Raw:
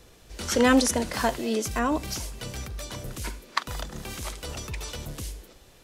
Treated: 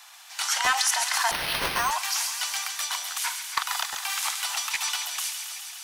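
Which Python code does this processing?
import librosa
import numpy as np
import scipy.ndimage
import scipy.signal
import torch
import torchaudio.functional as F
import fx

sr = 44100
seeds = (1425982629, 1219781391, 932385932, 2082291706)

p1 = scipy.signal.sosfilt(scipy.signal.butter(12, 750.0, 'highpass', fs=sr, output='sos'), x)
p2 = fx.over_compress(p1, sr, threshold_db=-37.0, ratio=-1.0)
p3 = p1 + (p2 * 10.0 ** (0.0 / 20.0))
p4 = np.clip(10.0 ** (16.0 / 20.0) * p3, -1.0, 1.0) / 10.0 ** (16.0 / 20.0)
p5 = fx.echo_wet_highpass(p4, sr, ms=137, feedback_pct=78, hz=2000.0, wet_db=-6.5)
p6 = fx.resample_bad(p5, sr, factor=6, down='none', up='hold', at=(1.31, 1.91))
p7 = fx.buffer_crackle(p6, sr, first_s=0.64, period_s=0.82, block=512, kind='repeat')
y = p7 * 10.0 ** (1.5 / 20.0)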